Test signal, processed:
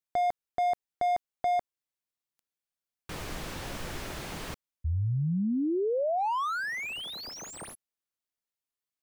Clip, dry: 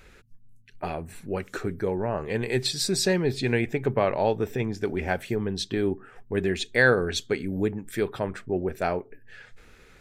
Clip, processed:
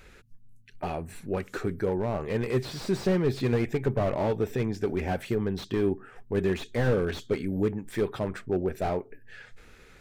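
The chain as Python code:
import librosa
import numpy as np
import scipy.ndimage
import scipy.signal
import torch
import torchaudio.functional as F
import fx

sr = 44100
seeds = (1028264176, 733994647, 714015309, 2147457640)

y = fx.slew_limit(x, sr, full_power_hz=41.0)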